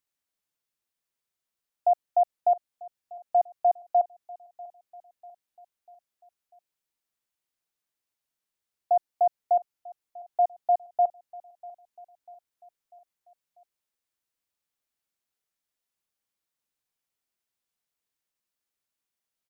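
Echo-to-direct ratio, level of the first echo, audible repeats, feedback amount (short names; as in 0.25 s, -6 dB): -19.5 dB, -21.0 dB, 3, 54%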